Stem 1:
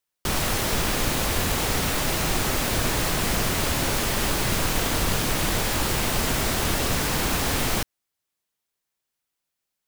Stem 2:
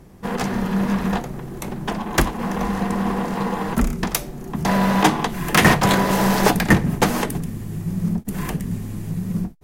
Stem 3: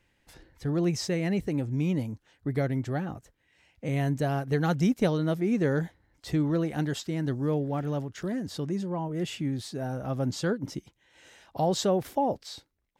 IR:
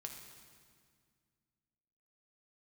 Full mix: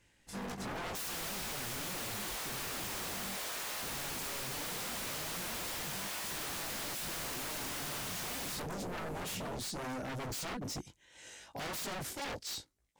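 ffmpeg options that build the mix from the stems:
-filter_complex "[0:a]highpass=640,adelay=700,volume=-7dB[a];[1:a]acompressor=threshold=-20dB:ratio=6,adelay=100,volume=-10.5dB[b];[2:a]equalizer=f=7.7k:t=o:w=1.4:g=9.5,asoftclip=type=hard:threshold=-28.5dB,volume=2.5dB,asplit=2[c][d];[d]apad=whole_len=429493[e];[b][e]sidechaingate=range=-33dB:threshold=-55dB:ratio=16:detection=peak[f];[a][f][c]amix=inputs=3:normalize=0,flanger=delay=18:depth=3.3:speed=0.78,aeval=exprs='0.0178*(abs(mod(val(0)/0.0178+3,4)-2)-1)':c=same"

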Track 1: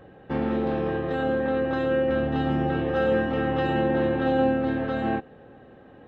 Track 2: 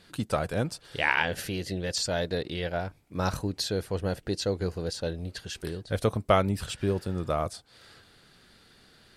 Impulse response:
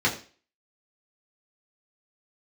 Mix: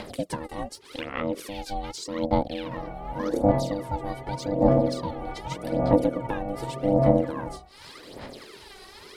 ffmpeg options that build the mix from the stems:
-filter_complex "[0:a]adelay=2350,volume=-8dB,asplit=2[a][b];[b]volume=-16dB[c];[1:a]acompressor=mode=upward:threshold=-39dB:ratio=2.5,volume=1.5dB,asplit=2[d][e];[e]apad=whole_len=371720[f];[a][f]sidechaingate=range=-33dB:threshold=-36dB:ratio=16:detection=peak[g];[2:a]atrim=start_sample=2205[h];[c][h]afir=irnorm=-1:irlink=0[i];[g][d][i]amix=inputs=3:normalize=0,acrossover=split=340[j][k];[k]acompressor=threshold=-38dB:ratio=4[l];[j][l]amix=inputs=2:normalize=0,aphaser=in_gain=1:out_gain=1:delay=2.7:decay=0.79:speed=0.85:type=sinusoidal,aeval=exprs='val(0)*sin(2*PI*400*n/s)':c=same"

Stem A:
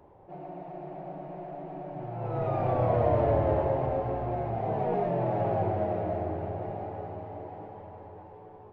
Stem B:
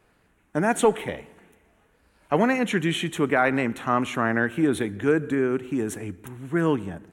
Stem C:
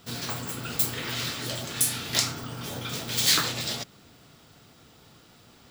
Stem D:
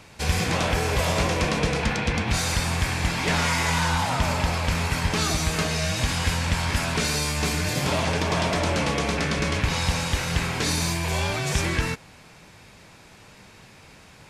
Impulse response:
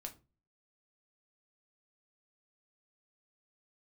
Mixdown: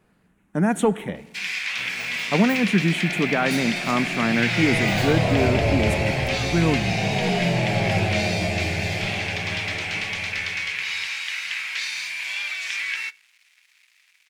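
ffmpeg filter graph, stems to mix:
-filter_complex "[0:a]asubboost=boost=2.5:cutoff=120,dynaudnorm=f=120:g=11:m=13dB,adelay=2350,volume=-10dB[a];[1:a]volume=-2.5dB[b];[2:a]equalizer=f=580:t=o:w=1.9:g=12,asplit=2[c][d];[d]adelay=11.2,afreqshift=-1.4[e];[c][e]amix=inputs=2:normalize=1,adelay=1700,volume=-14dB[f];[3:a]acrossover=split=5800[g][h];[h]acompressor=threshold=-46dB:ratio=4:attack=1:release=60[i];[g][i]amix=inputs=2:normalize=0,aeval=exprs='sgn(val(0))*max(abs(val(0))-0.00422,0)':c=same,highpass=f=2.2k:t=q:w=2.7,adelay=1150,volume=-5dB,asplit=2[j][k];[k]volume=-4dB[l];[4:a]atrim=start_sample=2205[m];[l][m]afir=irnorm=-1:irlink=0[n];[a][b][f][j][n]amix=inputs=5:normalize=0,equalizer=f=190:w=2:g=11.5"

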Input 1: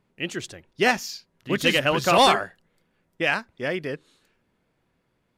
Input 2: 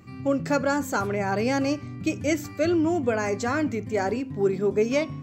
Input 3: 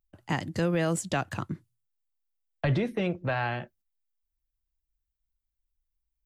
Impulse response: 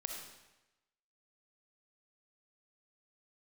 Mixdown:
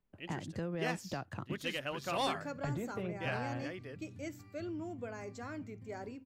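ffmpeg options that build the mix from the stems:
-filter_complex "[0:a]volume=-17.5dB[a];[1:a]equalizer=f=110:w=1.4:g=5,bandreject=f=6.2k:w=19,adelay=1950,volume=-19dB[b];[2:a]highshelf=f=2.6k:g=-10.5,acompressor=threshold=-37dB:ratio=2,volume=-4dB[c];[a][b][c]amix=inputs=3:normalize=0"

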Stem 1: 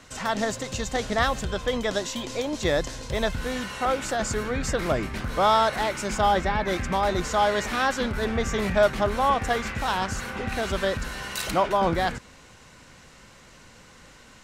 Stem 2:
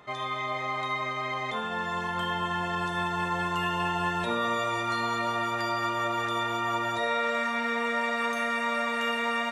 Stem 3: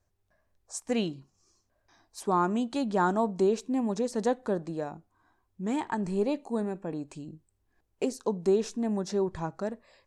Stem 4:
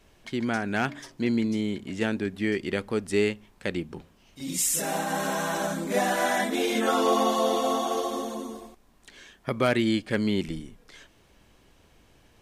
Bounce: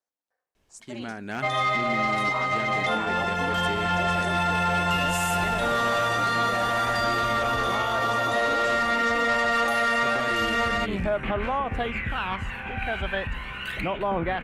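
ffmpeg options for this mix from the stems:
-filter_complex "[0:a]aphaser=in_gain=1:out_gain=1:delay=1.3:decay=0.49:speed=0.33:type=sinusoidal,highshelf=f=3.8k:t=q:w=3:g=-13,adelay=2300,volume=-11dB[a];[1:a]aecho=1:1:1.5:0.76,asoftclip=type=tanh:threshold=-24dB,adelay=1350,volume=2dB[b];[2:a]highpass=470,aeval=exprs='val(0)*sin(2*PI*110*n/s)':c=same,volume=-7dB,asplit=2[c][d];[3:a]adelay=550,volume=-11.5dB[e];[d]apad=whole_len=738071[f];[a][f]sidechaincompress=threshold=-50dB:ratio=8:attack=16:release=1340[g];[g][b][c][e]amix=inputs=4:normalize=0,dynaudnorm=f=780:g=3:m=7dB,alimiter=limit=-17.5dB:level=0:latency=1:release=130"

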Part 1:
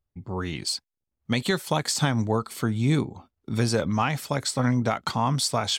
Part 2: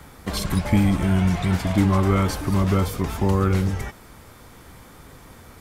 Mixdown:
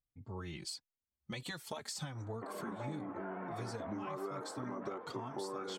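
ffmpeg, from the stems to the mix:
-filter_complex "[0:a]asplit=2[a][b];[b]adelay=3.6,afreqshift=-1.4[c];[a][c]amix=inputs=2:normalize=1,volume=-9dB[d];[1:a]highpass=f=300:w=0.5412,highpass=f=300:w=1.3066,flanger=delay=6.1:depth=8.8:regen=71:speed=0.41:shape=sinusoidal,lowpass=f=1.5k:w=0.5412,lowpass=f=1.5k:w=1.3066,adelay=2150,volume=-0.5dB[e];[d][e]amix=inputs=2:normalize=0,acompressor=threshold=-39dB:ratio=6"

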